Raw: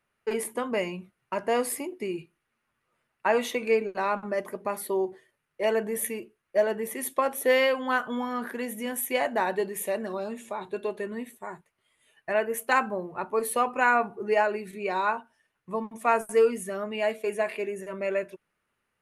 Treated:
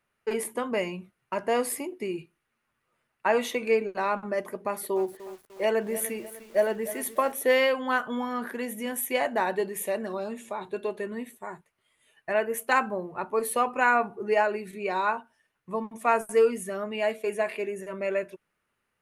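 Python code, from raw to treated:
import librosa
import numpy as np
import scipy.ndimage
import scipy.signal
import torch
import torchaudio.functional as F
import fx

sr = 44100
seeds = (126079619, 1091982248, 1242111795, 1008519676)

y = fx.echo_crushed(x, sr, ms=300, feedback_pct=55, bits=7, wet_db=-14, at=(4.53, 7.32))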